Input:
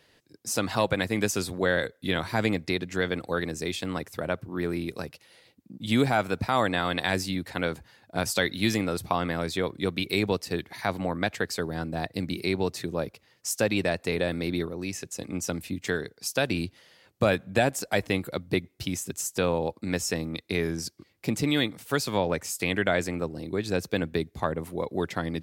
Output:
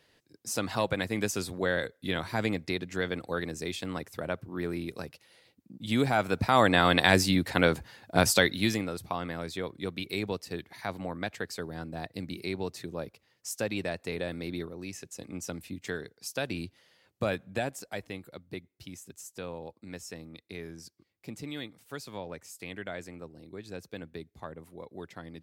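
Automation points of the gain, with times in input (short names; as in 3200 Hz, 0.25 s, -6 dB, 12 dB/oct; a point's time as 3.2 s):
5.95 s -4 dB
6.85 s +5 dB
8.26 s +5 dB
8.94 s -7 dB
17.42 s -7 dB
18.19 s -14 dB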